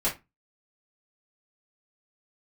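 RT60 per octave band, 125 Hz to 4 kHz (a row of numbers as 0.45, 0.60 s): 0.30, 0.30, 0.20, 0.25, 0.20, 0.15 s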